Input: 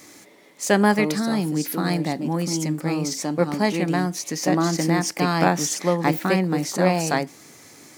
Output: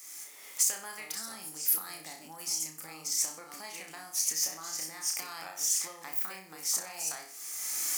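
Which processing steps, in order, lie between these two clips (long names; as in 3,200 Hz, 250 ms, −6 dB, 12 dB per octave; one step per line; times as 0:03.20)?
camcorder AGC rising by 26 dB per second
thirty-one-band graphic EQ 125 Hz +7 dB, 800 Hz +4 dB, 1,250 Hz +5 dB, 4,000 Hz −7 dB
on a send: flutter between parallel walls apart 5.4 metres, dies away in 0.38 s
on the sum: downward compressor 3 to 1, threshold −25 dBFS, peak gain reduction 11.5 dB
first difference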